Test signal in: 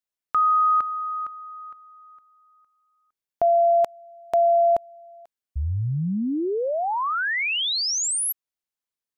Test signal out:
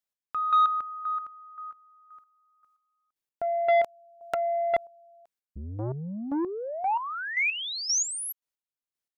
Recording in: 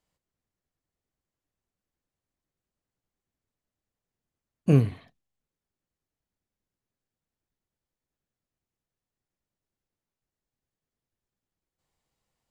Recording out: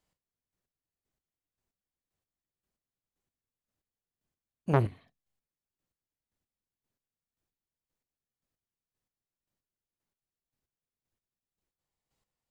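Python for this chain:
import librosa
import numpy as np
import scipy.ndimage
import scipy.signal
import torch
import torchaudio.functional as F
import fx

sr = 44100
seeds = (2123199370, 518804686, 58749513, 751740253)

y = fx.chopper(x, sr, hz=1.9, depth_pct=65, duty_pct=25)
y = fx.transformer_sat(y, sr, knee_hz=770.0)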